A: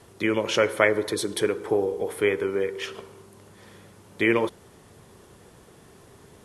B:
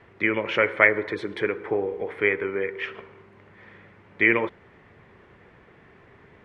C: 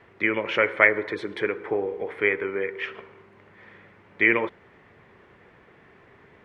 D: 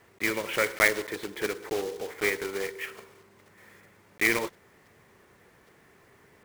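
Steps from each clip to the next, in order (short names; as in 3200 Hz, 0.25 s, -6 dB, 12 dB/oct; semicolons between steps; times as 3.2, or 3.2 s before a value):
synth low-pass 2100 Hz, resonance Q 3.1; gain -2.5 dB
low shelf 160 Hz -5.5 dB
block floating point 3-bit; gain -5 dB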